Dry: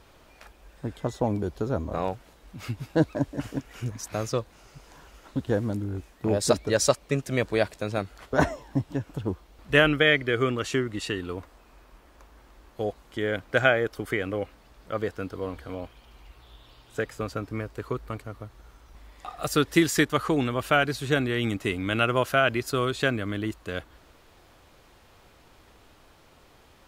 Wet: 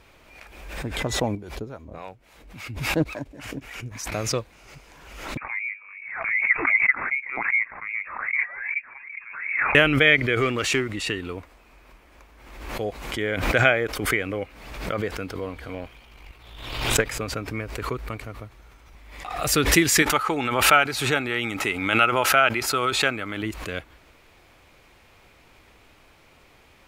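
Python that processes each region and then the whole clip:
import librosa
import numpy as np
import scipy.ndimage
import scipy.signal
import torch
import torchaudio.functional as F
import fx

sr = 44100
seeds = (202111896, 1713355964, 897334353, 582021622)

y = fx.chain(x, sr, fx.harmonic_tremolo(hz=3.6, depth_pct=70, crossover_hz=640.0),
    fx.clip_hard(threshold_db=-12.5),
    fx.upward_expand(threshold_db=-38.0, expansion=1.5), at=(1.35, 4.12))
y = fx.chain(y, sr, fx.wah_lfo(hz=2.6, low_hz=360.0, high_hz=1600.0, q=3.9),
    fx.freq_invert(carrier_hz=2600), at=(5.37, 9.75))
y = fx.chain(y, sr, fx.low_shelf(hz=350.0, db=-4.5),
    fx.leveller(passes=1), at=(10.37, 10.89))
y = fx.chain(y, sr, fx.halfwave_gain(db=-3.0),
    fx.transient(attack_db=8, sustain_db=4), at=(15.74, 17.09))
y = fx.chain(y, sr, fx.low_shelf(hz=220.0, db=-10.0),
    fx.small_body(hz=(860.0, 1300.0), ring_ms=35, db=11), at=(20.02, 23.43))
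y = fx.peak_eq(y, sr, hz=2300.0, db=8.5, octaves=0.49)
y = fx.pre_swell(y, sr, db_per_s=54.0)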